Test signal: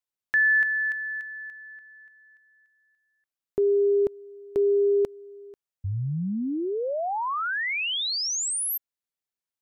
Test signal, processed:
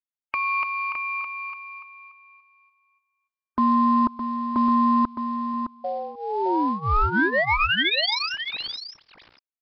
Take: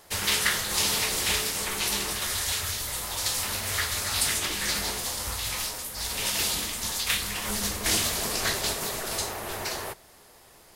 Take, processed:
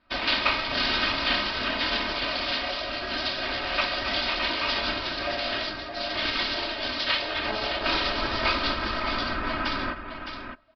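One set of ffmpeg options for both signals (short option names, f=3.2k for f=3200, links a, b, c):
-filter_complex "[0:a]afftdn=nr=19:nf=-43,lowshelf=f=320:g=6,aecho=1:1:3.2:0.87,adynamicequalizer=threshold=0.02:dfrequency=690:dqfactor=1.7:tfrequency=690:tqfactor=1.7:attack=5:release=100:ratio=0.4:range=2:mode=boostabove:tftype=bell,asplit=2[a][b];[b]acompressor=threshold=-28dB:ratio=8:attack=0.25:release=555:knee=1:detection=rms,volume=2.5dB[c];[a][c]amix=inputs=2:normalize=0,aeval=exprs='0.473*(cos(1*acos(clip(val(0)/0.473,-1,1)))-cos(1*PI/2))+0.00531*(cos(3*acos(clip(val(0)/0.473,-1,1)))-cos(3*PI/2))':c=same,adynamicsmooth=sensitivity=6.5:basefreq=4.3k,asplit=2[d][e];[e]highpass=f=720:p=1,volume=7dB,asoftclip=type=tanh:threshold=-7dB[f];[d][f]amix=inputs=2:normalize=0,lowpass=f=3.9k:p=1,volume=-6dB,aeval=exprs='val(0)*sin(2*PI*640*n/s)':c=same,acrusher=bits=6:mode=log:mix=0:aa=0.000001,aecho=1:1:613:0.398,aresample=11025,aresample=44100"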